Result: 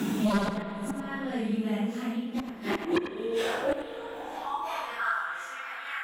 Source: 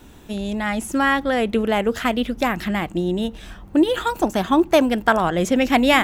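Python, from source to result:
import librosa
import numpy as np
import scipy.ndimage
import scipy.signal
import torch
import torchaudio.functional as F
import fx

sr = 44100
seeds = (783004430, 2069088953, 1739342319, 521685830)

p1 = fx.phase_scramble(x, sr, seeds[0], window_ms=200)
p2 = scipy.signal.sosfilt(scipy.signal.butter(4, 73.0, 'highpass', fs=sr, output='sos'), p1)
p3 = fx.notch(p2, sr, hz=590.0, q=12.0)
p4 = fx.gate_flip(p3, sr, shuts_db=-16.0, range_db=-29)
p5 = fx.filter_sweep_highpass(p4, sr, from_hz=190.0, to_hz=1500.0, start_s=1.94, end_s=5.27, q=4.4)
p6 = fx.fold_sine(p5, sr, drive_db=12, ceiling_db=-11.0)
p7 = p5 + (p6 * 10.0 ** (-3.5 / 20.0))
p8 = p7 * (1.0 - 0.85 / 2.0 + 0.85 / 2.0 * np.cos(2.0 * np.pi * 0.6 * (np.arange(len(p7)) / sr)))
p9 = p8 + fx.echo_single(p8, sr, ms=92, db=-9.5, dry=0)
p10 = fx.rev_spring(p9, sr, rt60_s=2.7, pass_ms=(35, 48), chirp_ms=35, drr_db=10.5)
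p11 = fx.band_squash(p10, sr, depth_pct=70)
y = p11 * 10.0 ** (-3.0 / 20.0)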